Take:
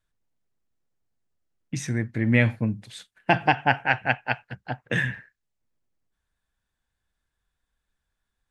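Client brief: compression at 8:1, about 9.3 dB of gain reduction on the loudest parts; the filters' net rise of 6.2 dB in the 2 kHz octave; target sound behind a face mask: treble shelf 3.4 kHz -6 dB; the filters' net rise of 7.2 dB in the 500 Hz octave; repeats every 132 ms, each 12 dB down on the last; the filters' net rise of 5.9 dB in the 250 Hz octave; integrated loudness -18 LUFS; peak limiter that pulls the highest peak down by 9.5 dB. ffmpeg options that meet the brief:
-af "equalizer=f=250:t=o:g=5,equalizer=f=500:t=o:g=8,equalizer=f=2000:t=o:g=9,acompressor=threshold=0.126:ratio=8,alimiter=limit=0.224:level=0:latency=1,highshelf=f=3400:g=-6,aecho=1:1:132|264|396:0.251|0.0628|0.0157,volume=3.35"

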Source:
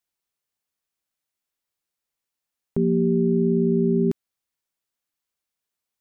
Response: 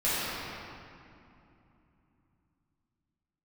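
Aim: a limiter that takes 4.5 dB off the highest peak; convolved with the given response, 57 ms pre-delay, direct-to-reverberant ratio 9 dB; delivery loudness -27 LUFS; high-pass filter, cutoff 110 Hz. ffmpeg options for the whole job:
-filter_complex "[0:a]highpass=110,alimiter=limit=0.15:level=0:latency=1,asplit=2[s0][s1];[1:a]atrim=start_sample=2205,adelay=57[s2];[s1][s2]afir=irnorm=-1:irlink=0,volume=0.0794[s3];[s0][s3]amix=inputs=2:normalize=0,volume=0.794"

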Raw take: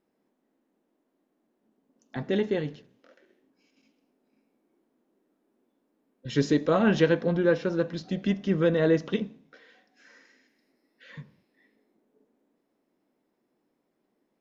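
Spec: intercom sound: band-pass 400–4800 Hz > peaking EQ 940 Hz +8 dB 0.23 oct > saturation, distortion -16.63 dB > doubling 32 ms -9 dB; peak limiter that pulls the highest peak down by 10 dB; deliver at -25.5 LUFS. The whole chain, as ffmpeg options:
-filter_complex "[0:a]alimiter=limit=0.112:level=0:latency=1,highpass=400,lowpass=4800,equalizer=f=940:t=o:w=0.23:g=8,asoftclip=threshold=0.0596,asplit=2[s0][s1];[s1]adelay=32,volume=0.355[s2];[s0][s2]amix=inputs=2:normalize=0,volume=2.99"

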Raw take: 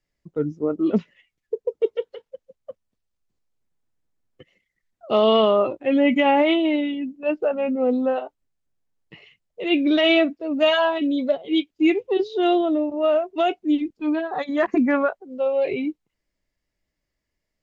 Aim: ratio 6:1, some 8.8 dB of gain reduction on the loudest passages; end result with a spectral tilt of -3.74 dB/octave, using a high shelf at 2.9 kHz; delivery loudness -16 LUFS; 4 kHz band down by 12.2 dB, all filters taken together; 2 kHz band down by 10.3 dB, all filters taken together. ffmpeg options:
-af "equalizer=f=2000:t=o:g=-7,highshelf=f=2900:g=-8.5,equalizer=f=4000:t=o:g=-8,acompressor=threshold=0.0631:ratio=6,volume=4.22"

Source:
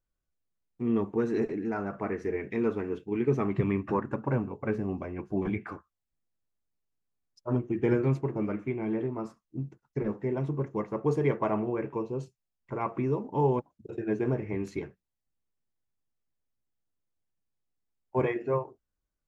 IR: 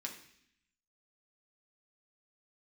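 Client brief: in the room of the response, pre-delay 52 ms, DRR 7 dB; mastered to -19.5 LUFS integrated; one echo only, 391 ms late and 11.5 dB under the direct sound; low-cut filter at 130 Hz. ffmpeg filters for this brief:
-filter_complex "[0:a]highpass=130,aecho=1:1:391:0.266,asplit=2[s0][s1];[1:a]atrim=start_sample=2205,adelay=52[s2];[s1][s2]afir=irnorm=-1:irlink=0,volume=0.501[s3];[s0][s3]amix=inputs=2:normalize=0,volume=3.55"

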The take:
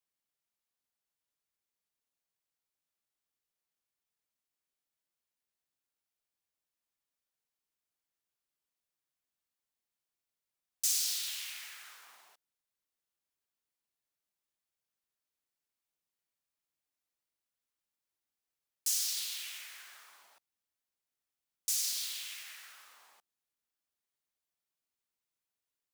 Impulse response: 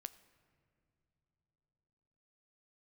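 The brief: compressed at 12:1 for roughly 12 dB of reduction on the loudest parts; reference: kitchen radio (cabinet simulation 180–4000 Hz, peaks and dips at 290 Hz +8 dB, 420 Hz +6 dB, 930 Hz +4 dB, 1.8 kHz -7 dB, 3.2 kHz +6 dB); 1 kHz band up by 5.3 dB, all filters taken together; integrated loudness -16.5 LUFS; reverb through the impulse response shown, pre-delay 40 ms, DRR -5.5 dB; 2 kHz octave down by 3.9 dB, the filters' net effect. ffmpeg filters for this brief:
-filter_complex "[0:a]equalizer=f=1000:t=o:g=7,equalizer=f=2000:t=o:g=-6,acompressor=threshold=0.0112:ratio=12,asplit=2[s0][s1];[1:a]atrim=start_sample=2205,adelay=40[s2];[s1][s2]afir=irnorm=-1:irlink=0,volume=3.35[s3];[s0][s3]amix=inputs=2:normalize=0,highpass=180,equalizer=f=290:t=q:w=4:g=8,equalizer=f=420:t=q:w=4:g=6,equalizer=f=930:t=q:w=4:g=4,equalizer=f=1800:t=q:w=4:g=-7,equalizer=f=3200:t=q:w=4:g=6,lowpass=f=4000:w=0.5412,lowpass=f=4000:w=1.3066,volume=20"

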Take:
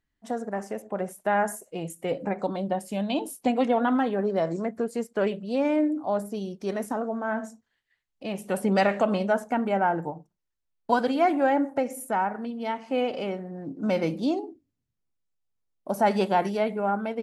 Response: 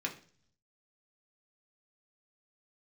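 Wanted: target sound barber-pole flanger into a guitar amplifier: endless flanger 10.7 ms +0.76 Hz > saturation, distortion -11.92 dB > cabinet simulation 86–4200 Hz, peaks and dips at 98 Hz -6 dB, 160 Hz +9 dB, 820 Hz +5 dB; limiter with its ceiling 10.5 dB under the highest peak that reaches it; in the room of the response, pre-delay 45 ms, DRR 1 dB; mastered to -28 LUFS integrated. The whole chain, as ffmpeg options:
-filter_complex "[0:a]alimiter=limit=0.106:level=0:latency=1,asplit=2[s0][s1];[1:a]atrim=start_sample=2205,adelay=45[s2];[s1][s2]afir=irnorm=-1:irlink=0,volume=0.631[s3];[s0][s3]amix=inputs=2:normalize=0,asplit=2[s4][s5];[s5]adelay=10.7,afreqshift=0.76[s6];[s4][s6]amix=inputs=2:normalize=1,asoftclip=threshold=0.0531,highpass=86,equalizer=f=98:t=q:w=4:g=-6,equalizer=f=160:t=q:w=4:g=9,equalizer=f=820:t=q:w=4:g=5,lowpass=f=4200:w=0.5412,lowpass=f=4200:w=1.3066,volume=1.58"

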